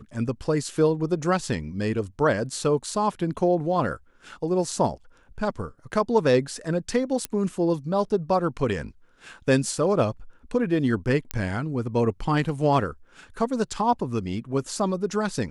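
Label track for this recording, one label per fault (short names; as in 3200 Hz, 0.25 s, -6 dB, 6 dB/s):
7.250000	7.250000	pop -11 dBFS
11.310000	11.310000	pop -10 dBFS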